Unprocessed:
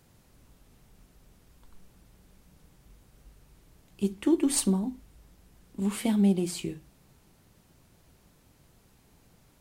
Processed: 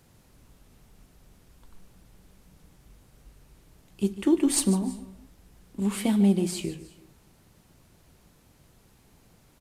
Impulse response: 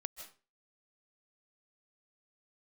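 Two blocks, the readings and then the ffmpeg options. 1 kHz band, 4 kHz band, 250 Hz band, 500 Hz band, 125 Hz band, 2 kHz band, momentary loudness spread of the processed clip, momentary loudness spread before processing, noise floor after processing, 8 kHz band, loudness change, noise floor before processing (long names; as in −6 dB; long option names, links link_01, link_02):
+2.0 dB, +2.0 dB, +2.0 dB, +2.0 dB, +2.0 dB, +2.0 dB, 17 LU, 14 LU, −60 dBFS, +2.0 dB, +2.0 dB, −62 dBFS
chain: -filter_complex "[0:a]asplit=2[link_01][link_02];[1:a]atrim=start_sample=2205,asetrate=39249,aresample=44100,adelay=148[link_03];[link_02][link_03]afir=irnorm=-1:irlink=0,volume=-12dB[link_04];[link_01][link_04]amix=inputs=2:normalize=0,aresample=32000,aresample=44100,volume=2dB"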